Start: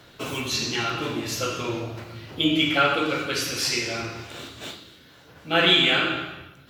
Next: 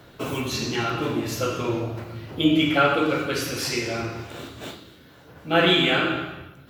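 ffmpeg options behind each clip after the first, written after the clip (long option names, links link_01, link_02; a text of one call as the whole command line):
ffmpeg -i in.wav -af "equalizer=frequency=4600:width=0.37:gain=-8,volume=4dB" out.wav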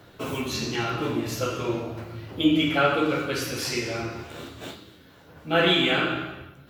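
ffmpeg -i in.wav -af "flanger=delay=9.7:depth=7.2:regen=-44:speed=0.41:shape=triangular,volume=2dB" out.wav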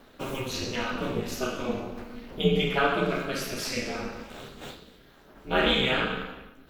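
ffmpeg -i in.wav -af "aeval=exprs='val(0)*sin(2*PI*130*n/s)':channel_layout=same" out.wav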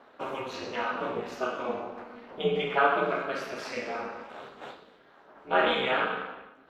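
ffmpeg -i in.wav -af "bandpass=frequency=930:width_type=q:width=1:csg=0,volume=4dB" out.wav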